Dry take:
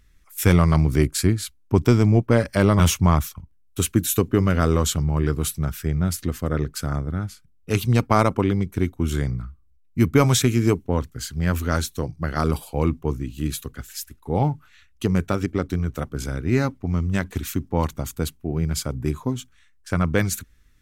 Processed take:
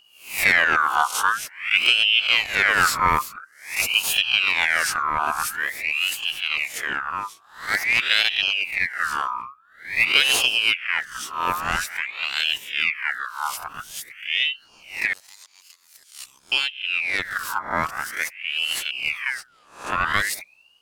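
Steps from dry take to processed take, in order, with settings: reverse spectral sustain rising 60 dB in 0.45 s; 15.13–16.52 s: inverse Chebyshev high-pass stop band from 1.3 kHz, stop band 50 dB; ring modulator with a swept carrier 2 kHz, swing 45%, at 0.48 Hz

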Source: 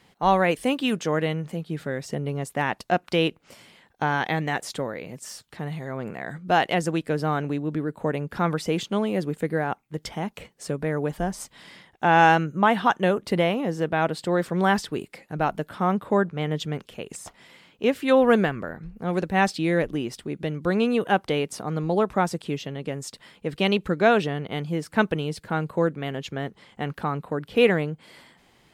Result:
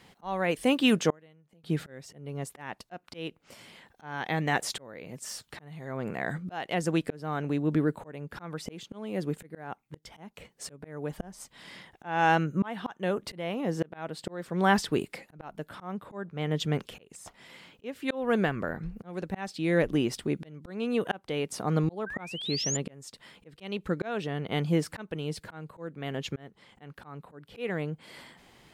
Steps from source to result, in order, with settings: 22.06–22.77 s: painted sound rise 1.5–7.3 kHz -31 dBFS; slow attack 656 ms; 1.10–1.64 s: inverted gate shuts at -31 dBFS, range -33 dB; trim +2 dB

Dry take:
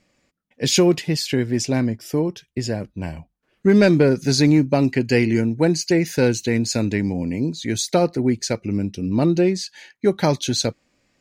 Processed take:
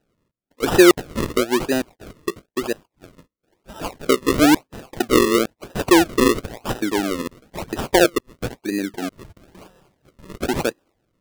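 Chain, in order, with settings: LFO high-pass square 1.1 Hz 340–3400 Hz; 9.32–10.30 s: feedback comb 190 Hz, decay 0.9 s, mix 80%; decimation with a swept rate 39×, swing 100% 1 Hz; trim -1.5 dB

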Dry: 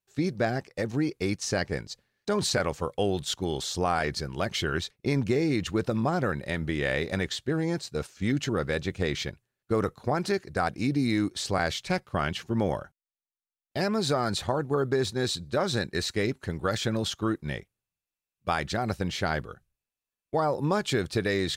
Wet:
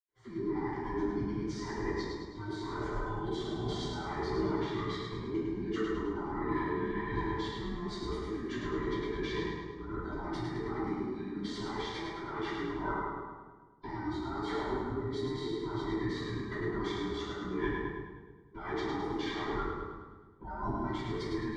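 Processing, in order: every band turned upside down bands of 500 Hz; compressor with a negative ratio -36 dBFS, ratio -1; Butterworth band-stop 2.6 kHz, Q 5.3; two-band feedback delay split 330 Hz, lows 154 ms, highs 105 ms, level -4 dB; reverberation RT60 1.1 s, pre-delay 77 ms; trim -1.5 dB

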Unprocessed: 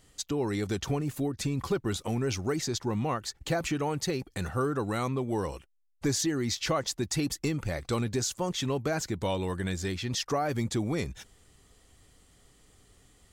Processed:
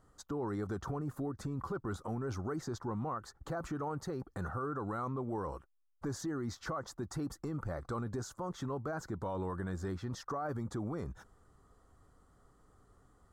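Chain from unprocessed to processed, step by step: resonant high shelf 1.8 kHz -11.5 dB, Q 3; peak limiter -26 dBFS, peak gain reduction 11.5 dB; trim -4 dB

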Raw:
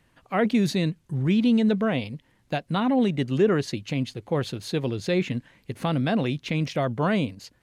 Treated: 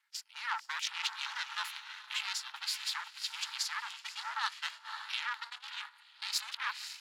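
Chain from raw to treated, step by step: reverse the whole clip; peak limiter -16.5 dBFS, peak gain reduction 6.5 dB; echo that smears into a reverb 574 ms, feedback 46%, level -10 dB; saturation -24 dBFS, distortion -12 dB; rippled Chebyshev high-pass 1 kHz, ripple 3 dB; speed mistake 44.1 kHz file played as 48 kHz; ring modulator 230 Hz; gate -51 dBFS, range -11 dB; trim +7 dB

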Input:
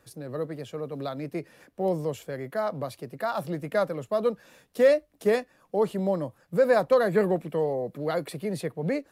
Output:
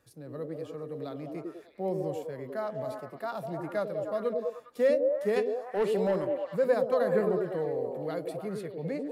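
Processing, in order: 5.36–6.25 s: overdrive pedal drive 17 dB, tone 7.3 kHz, clips at -13.5 dBFS; repeats whose band climbs or falls 101 ms, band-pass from 330 Hz, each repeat 0.7 oct, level 0 dB; harmonic-percussive split percussive -5 dB; trim -5.5 dB

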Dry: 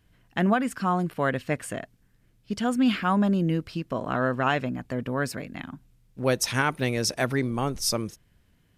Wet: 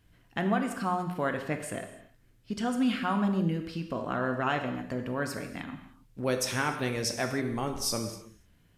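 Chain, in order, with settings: in parallel at +1.5 dB: compression, threshold -35 dBFS, peak gain reduction 16.5 dB; on the sum: gated-style reverb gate 330 ms falling, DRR 5 dB; trim -7.5 dB

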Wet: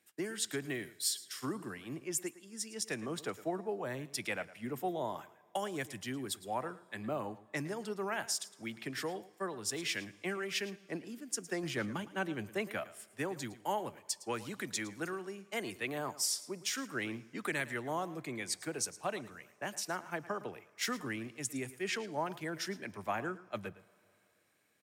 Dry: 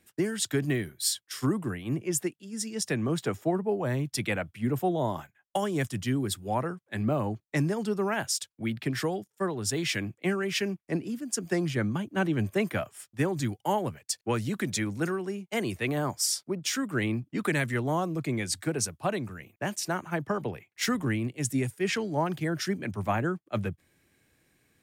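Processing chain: high-pass 460 Hz 6 dB/octave; 11.63–12.05 s: waveshaping leveller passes 1; delay 110 ms -17 dB; on a send at -22 dB: reverberation RT60 3.0 s, pre-delay 7 ms; on the sum: trim -5.5 dB

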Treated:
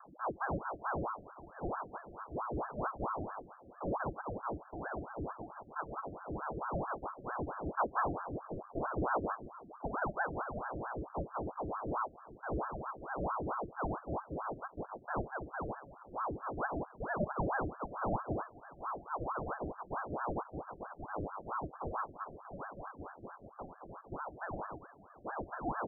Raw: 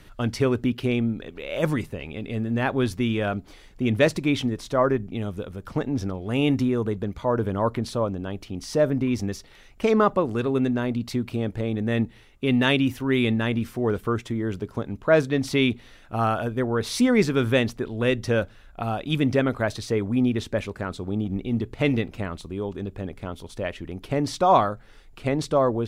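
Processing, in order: 7.76–9.91 s: bass shelf 350 Hz +8 dB; frequency-shifting echo 154 ms, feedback 61%, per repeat -31 Hz, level -17 dB; chorus voices 6, 0.23 Hz, delay 18 ms, depth 1.6 ms; upward compressor, threshold -33 dBFS; rippled Chebyshev low-pass 530 Hz, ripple 9 dB; ring modulator with a swept carrier 700 Hz, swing 75%, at 4.5 Hz; trim -5.5 dB

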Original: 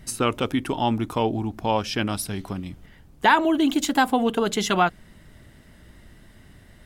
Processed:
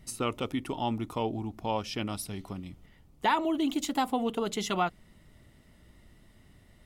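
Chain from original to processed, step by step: band-stop 1.6 kHz, Q 5.7; trim -8 dB

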